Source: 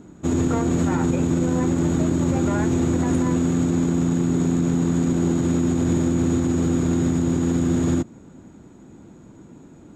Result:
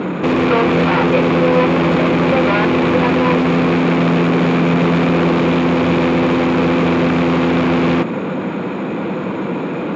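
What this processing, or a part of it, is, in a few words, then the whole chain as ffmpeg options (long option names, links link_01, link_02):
overdrive pedal into a guitar cabinet: -filter_complex "[0:a]asplit=2[link_01][link_02];[link_02]highpass=frequency=720:poles=1,volume=38dB,asoftclip=type=tanh:threshold=-10.5dB[link_03];[link_01][link_03]amix=inputs=2:normalize=0,lowpass=frequency=4600:poles=1,volume=-6dB,highpass=100,equalizer=frequency=180:width_type=q:width=4:gain=8,equalizer=frequency=500:width_type=q:width=4:gain=9,equalizer=frequency=1100:width_type=q:width=4:gain=5,equalizer=frequency=2400:width_type=q:width=4:gain=8,lowpass=frequency=3800:width=0.5412,lowpass=frequency=3800:width=1.3066"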